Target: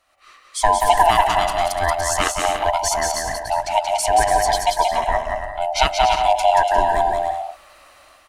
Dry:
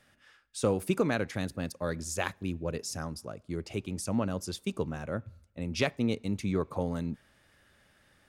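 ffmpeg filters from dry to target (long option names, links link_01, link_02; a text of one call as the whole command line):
ffmpeg -i in.wav -filter_complex "[0:a]afftfilt=real='real(if(lt(b,1008),b+24*(1-2*mod(floor(b/24),2)),b),0)':imag='imag(if(lt(b,1008),b+24*(1-2*mod(floor(b/24),2)),b),0)':win_size=2048:overlap=0.75,equalizer=frequency=140:width=0.71:gain=-13,dynaudnorm=framelen=110:gausssize=5:maxgain=15dB,asplit=2[link_01][link_02];[link_02]aecho=0:1:180|288|352.8|391.7|415:0.631|0.398|0.251|0.158|0.1[link_03];[link_01][link_03]amix=inputs=2:normalize=0" out.wav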